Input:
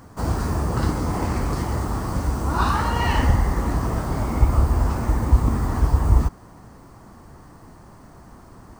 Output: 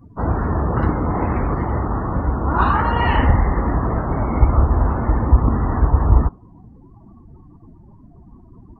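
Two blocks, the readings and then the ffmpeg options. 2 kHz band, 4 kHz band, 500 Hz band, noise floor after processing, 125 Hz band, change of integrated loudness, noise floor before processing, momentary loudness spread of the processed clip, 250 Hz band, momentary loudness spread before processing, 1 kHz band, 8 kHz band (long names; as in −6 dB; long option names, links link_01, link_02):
+3.5 dB, −2.5 dB, +5.0 dB, −46 dBFS, +3.0 dB, +3.5 dB, −46 dBFS, 6 LU, +4.0 dB, 6 LU, +5.0 dB, below −35 dB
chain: -filter_complex "[0:a]acrossover=split=3700[link_01][link_02];[link_02]acompressor=threshold=-54dB:ratio=4:attack=1:release=60[link_03];[link_01][link_03]amix=inputs=2:normalize=0,afftdn=noise_reduction=29:noise_floor=-39,bass=frequency=250:gain=-2,treble=frequency=4000:gain=-6,volume=5dB"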